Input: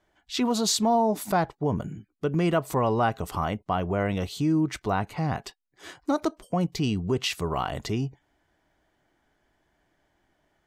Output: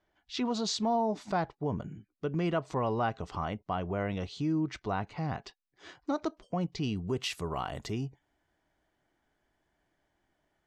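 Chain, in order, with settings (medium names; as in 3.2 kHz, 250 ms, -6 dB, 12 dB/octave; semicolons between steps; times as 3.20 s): low-pass 6.1 kHz 24 dB/octave, from 6.96 s 12 kHz; trim -6.5 dB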